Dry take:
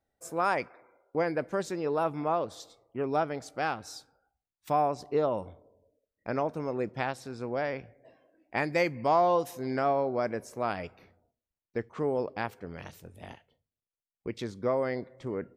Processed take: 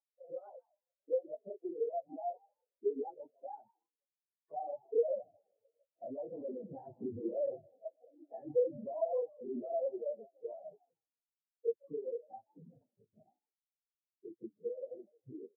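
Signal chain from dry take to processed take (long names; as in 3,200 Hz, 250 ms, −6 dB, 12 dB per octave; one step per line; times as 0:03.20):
random phases in long frames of 50 ms
source passing by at 0:06.80, 12 m/s, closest 4.1 metres
elliptic band-pass filter 110–1,900 Hz
spectral tilt −4 dB per octave
upward compression, threshold −54 dBFS
mid-hump overdrive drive 38 dB, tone 1,400 Hz, clips at −11.5 dBFS
downward compressor 20 to 1, threshold −33 dBFS, peak gain reduction 16.5 dB
echo with shifted repeats 158 ms, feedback 45%, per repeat +93 Hz, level −7 dB
every bin expanded away from the loudest bin 4 to 1
level +4 dB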